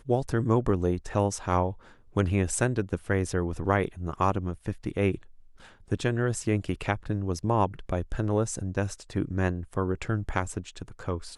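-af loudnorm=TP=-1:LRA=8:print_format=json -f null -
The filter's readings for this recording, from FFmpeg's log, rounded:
"input_i" : "-29.3",
"input_tp" : "-8.3",
"input_lra" : "3.6",
"input_thresh" : "-39.6",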